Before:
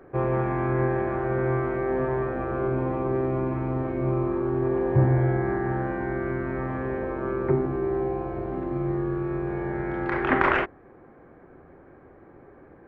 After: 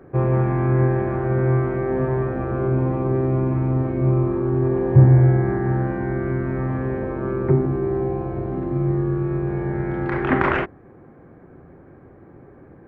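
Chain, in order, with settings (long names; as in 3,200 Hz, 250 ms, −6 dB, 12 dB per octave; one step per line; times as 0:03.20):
parametric band 130 Hz +9.5 dB 2.3 octaves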